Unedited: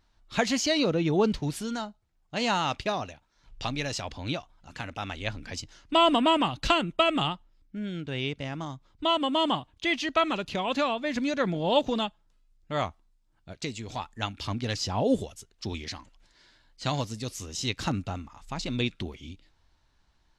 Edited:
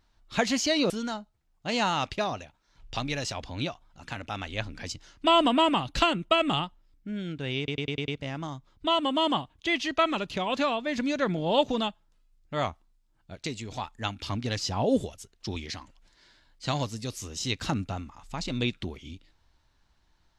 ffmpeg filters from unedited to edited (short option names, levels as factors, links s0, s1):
-filter_complex "[0:a]asplit=7[s0][s1][s2][s3][s4][s5][s6];[s0]atrim=end=0.902[s7];[s1]atrim=start=1.578:end=8.362[s8];[s2]atrim=start=8.258:end=8.362[s9];[s3]atrim=start=8.258:end=8.362[s10];[s4]atrim=start=8.258:end=8.362[s11];[s5]atrim=start=8.258:end=8.362[s12];[s6]atrim=start=8.258[s13];[s7][s8]acrossfade=d=0.004:c1=hsin:c2=hsin[s14];[s14][s9]acrossfade=d=0.004:c1=hsin:c2=hsin[s15];[s15][s10]acrossfade=d=0.004:c1=hsin:c2=hsin[s16];[s16][s11]acrossfade=d=0.004:c1=hsin:c2=hsin[s17];[s17][s12]acrossfade=d=0.004:c1=hsin:c2=hsin[s18];[s18][s13]acrossfade=d=0.004:c1=hsin:c2=hsin"